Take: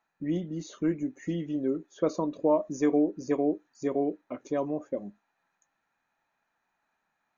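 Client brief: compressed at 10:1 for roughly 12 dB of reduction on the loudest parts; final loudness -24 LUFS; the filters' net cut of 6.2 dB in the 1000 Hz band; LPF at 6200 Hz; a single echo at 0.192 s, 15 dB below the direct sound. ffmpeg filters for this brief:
-af "lowpass=6.2k,equalizer=f=1k:t=o:g=-8.5,acompressor=threshold=-33dB:ratio=10,aecho=1:1:192:0.178,volume=15.5dB"

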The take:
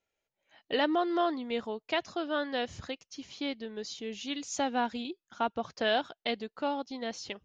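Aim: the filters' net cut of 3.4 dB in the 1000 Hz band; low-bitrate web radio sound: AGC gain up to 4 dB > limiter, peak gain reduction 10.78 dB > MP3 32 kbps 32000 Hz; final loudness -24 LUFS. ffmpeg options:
-af "equalizer=f=1k:t=o:g=-5,dynaudnorm=m=4dB,alimiter=level_in=4.5dB:limit=-24dB:level=0:latency=1,volume=-4.5dB,volume=15.5dB" -ar 32000 -c:a libmp3lame -b:a 32k

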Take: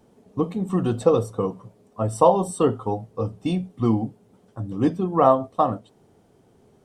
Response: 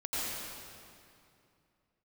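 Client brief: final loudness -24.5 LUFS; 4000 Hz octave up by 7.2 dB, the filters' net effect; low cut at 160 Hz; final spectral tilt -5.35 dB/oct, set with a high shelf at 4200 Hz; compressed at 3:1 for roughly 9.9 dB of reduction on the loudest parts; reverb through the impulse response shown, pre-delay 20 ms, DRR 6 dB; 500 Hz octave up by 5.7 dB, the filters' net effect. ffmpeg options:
-filter_complex "[0:a]highpass=160,equalizer=f=500:t=o:g=6.5,equalizer=f=4k:t=o:g=6,highshelf=f=4.2k:g=6,acompressor=threshold=-19dB:ratio=3,asplit=2[a][b];[1:a]atrim=start_sample=2205,adelay=20[c];[b][c]afir=irnorm=-1:irlink=0,volume=-12.5dB[d];[a][d]amix=inputs=2:normalize=0,volume=0.5dB"

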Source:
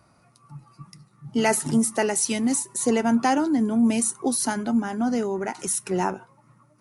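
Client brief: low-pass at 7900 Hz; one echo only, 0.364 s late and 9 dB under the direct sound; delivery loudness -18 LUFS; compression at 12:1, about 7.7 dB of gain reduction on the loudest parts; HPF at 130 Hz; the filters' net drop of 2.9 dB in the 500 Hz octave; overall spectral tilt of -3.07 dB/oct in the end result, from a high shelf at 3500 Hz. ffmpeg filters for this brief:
-af "highpass=130,lowpass=7.9k,equalizer=f=500:t=o:g=-4,highshelf=f=3.5k:g=8.5,acompressor=threshold=-24dB:ratio=12,aecho=1:1:364:0.355,volume=9.5dB"

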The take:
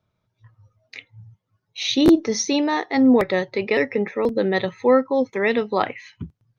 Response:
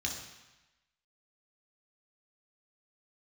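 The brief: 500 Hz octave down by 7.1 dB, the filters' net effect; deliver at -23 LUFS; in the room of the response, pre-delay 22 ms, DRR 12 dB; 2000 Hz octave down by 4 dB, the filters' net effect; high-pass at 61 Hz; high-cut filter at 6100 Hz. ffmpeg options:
-filter_complex "[0:a]highpass=61,lowpass=6.1k,equalizer=f=500:t=o:g=-8.5,equalizer=f=2k:t=o:g=-4,asplit=2[a][b];[1:a]atrim=start_sample=2205,adelay=22[c];[b][c]afir=irnorm=-1:irlink=0,volume=-15dB[d];[a][d]amix=inputs=2:normalize=0"

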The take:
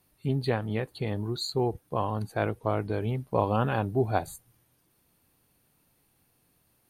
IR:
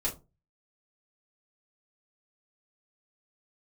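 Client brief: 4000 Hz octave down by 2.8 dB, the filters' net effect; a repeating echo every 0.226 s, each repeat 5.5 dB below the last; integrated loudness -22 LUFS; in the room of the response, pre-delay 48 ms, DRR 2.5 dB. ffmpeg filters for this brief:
-filter_complex "[0:a]equalizer=f=4k:t=o:g=-3,aecho=1:1:226|452|678|904|1130|1356|1582:0.531|0.281|0.149|0.079|0.0419|0.0222|0.0118,asplit=2[a][b];[1:a]atrim=start_sample=2205,adelay=48[c];[b][c]afir=irnorm=-1:irlink=0,volume=-7dB[d];[a][d]amix=inputs=2:normalize=0,volume=4dB"

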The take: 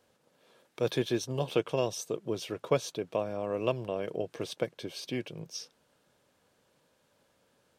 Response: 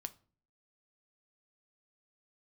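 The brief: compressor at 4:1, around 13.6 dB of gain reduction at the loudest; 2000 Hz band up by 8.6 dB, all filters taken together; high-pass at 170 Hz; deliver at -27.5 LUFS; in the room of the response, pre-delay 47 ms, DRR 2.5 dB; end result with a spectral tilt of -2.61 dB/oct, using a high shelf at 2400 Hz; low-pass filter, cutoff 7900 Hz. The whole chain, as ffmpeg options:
-filter_complex "[0:a]highpass=170,lowpass=7.9k,equalizer=f=2k:t=o:g=6,highshelf=f=2.4k:g=9,acompressor=threshold=-38dB:ratio=4,asplit=2[a][b];[1:a]atrim=start_sample=2205,adelay=47[c];[b][c]afir=irnorm=-1:irlink=0,volume=0.5dB[d];[a][d]amix=inputs=2:normalize=0,volume=11.5dB"

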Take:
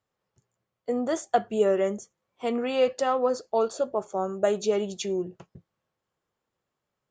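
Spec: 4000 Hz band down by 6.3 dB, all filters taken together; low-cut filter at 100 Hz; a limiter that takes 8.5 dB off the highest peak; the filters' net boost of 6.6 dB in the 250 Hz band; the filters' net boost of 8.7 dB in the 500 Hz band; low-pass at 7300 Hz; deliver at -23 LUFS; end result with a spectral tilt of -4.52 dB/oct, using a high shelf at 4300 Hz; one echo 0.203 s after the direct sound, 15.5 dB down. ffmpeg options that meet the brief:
-af "highpass=100,lowpass=7.3k,equalizer=f=250:t=o:g=5.5,equalizer=f=500:t=o:g=9,equalizer=f=4k:t=o:g=-5,highshelf=f=4.3k:g=-7.5,alimiter=limit=-12dB:level=0:latency=1,aecho=1:1:203:0.168,volume=-1dB"

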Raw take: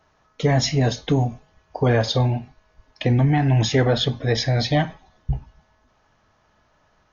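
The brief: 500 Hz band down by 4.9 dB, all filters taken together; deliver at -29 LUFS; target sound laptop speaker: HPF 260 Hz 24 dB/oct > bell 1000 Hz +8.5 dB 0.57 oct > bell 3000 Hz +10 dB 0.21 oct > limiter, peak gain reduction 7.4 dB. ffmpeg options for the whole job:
-af "highpass=f=260:w=0.5412,highpass=f=260:w=1.3066,equalizer=f=500:t=o:g=-7,equalizer=f=1k:t=o:w=0.57:g=8.5,equalizer=f=3k:t=o:w=0.21:g=10,volume=-2dB,alimiter=limit=-17.5dB:level=0:latency=1"

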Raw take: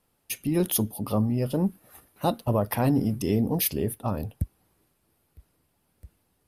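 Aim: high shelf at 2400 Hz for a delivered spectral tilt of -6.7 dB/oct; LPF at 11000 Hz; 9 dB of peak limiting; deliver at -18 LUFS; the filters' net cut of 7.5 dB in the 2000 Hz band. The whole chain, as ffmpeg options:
-af "lowpass=11k,equalizer=f=2k:t=o:g=-7,highshelf=f=2.4k:g=-5.5,volume=14.5dB,alimiter=limit=-7dB:level=0:latency=1"

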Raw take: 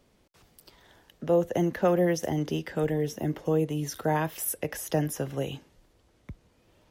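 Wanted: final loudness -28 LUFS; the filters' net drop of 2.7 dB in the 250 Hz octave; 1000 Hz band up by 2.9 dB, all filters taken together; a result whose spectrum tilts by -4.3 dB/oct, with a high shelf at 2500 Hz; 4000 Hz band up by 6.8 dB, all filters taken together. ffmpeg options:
-af "equalizer=f=250:t=o:g=-5,equalizer=f=1k:t=o:g=3.5,highshelf=f=2.5k:g=4.5,equalizer=f=4k:t=o:g=5.5"

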